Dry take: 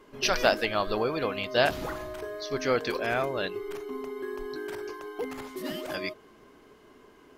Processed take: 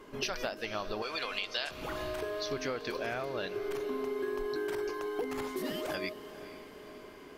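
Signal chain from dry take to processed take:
0:01.02–0:01.71: meter weighting curve ITU-R 468
downward compressor 12 to 1, threshold −35 dBFS, peak gain reduction 20.5 dB
on a send: feedback delay with all-pass diffusion 477 ms, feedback 61%, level −14 dB
on the sum: level +3 dB

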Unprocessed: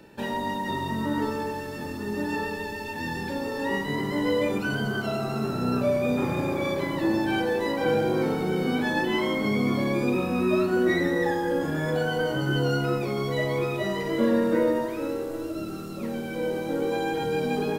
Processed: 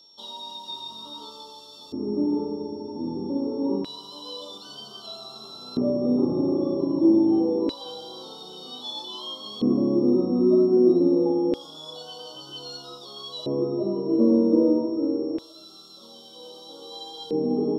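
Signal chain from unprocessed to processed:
elliptic band-stop filter 1,200–3,400 Hz, stop band 40 dB
auto-filter band-pass square 0.26 Hz 310–3,400 Hz
steady tone 5,500 Hz −60 dBFS
level +8.5 dB

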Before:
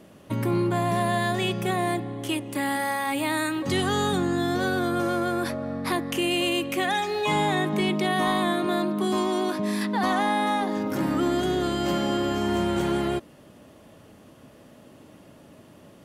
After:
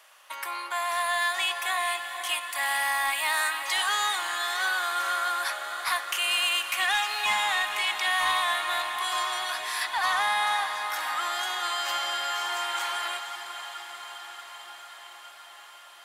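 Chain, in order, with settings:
high-pass filter 960 Hz 24 dB per octave
soft clipping −22.5 dBFS, distortion −20 dB
feedback delay with all-pass diffusion 472 ms, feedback 75%, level −10 dB
level +4.5 dB

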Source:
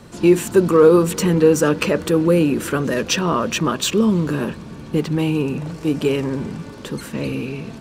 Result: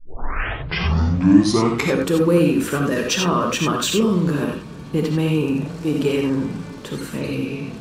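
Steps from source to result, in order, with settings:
turntable start at the beginning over 2.12 s
reverb whose tail is shaped and stops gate 110 ms rising, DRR 2 dB
level −2 dB

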